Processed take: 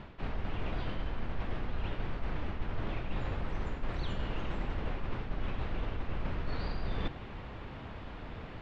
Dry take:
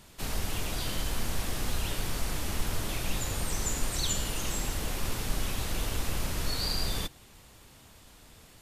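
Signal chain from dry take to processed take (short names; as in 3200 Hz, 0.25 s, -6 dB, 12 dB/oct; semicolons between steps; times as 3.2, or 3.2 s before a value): Bessel low-pass 1900 Hz, order 4; reverse; compressor 8:1, threshold -43 dBFS, peak gain reduction 20.5 dB; reverse; gain +12.5 dB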